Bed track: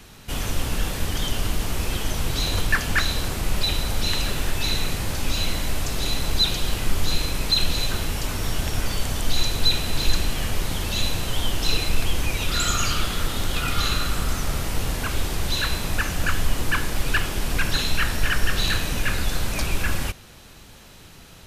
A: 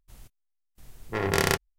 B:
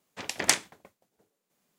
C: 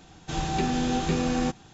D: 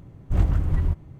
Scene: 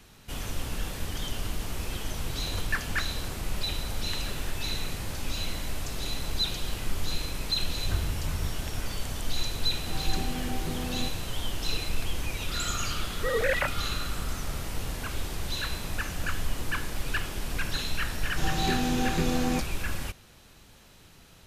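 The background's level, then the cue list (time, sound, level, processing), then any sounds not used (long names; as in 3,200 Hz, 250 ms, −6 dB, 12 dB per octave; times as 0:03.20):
bed track −8 dB
0:07.54: mix in D −11 dB
0:09.58: mix in C −9.5 dB + slew-rate limiting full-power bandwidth 41 Hz
0:12.11: mix in A −2.5 dB + three sine waves on the formant tracks
0:18.09: mix in C −2 dB
not used: B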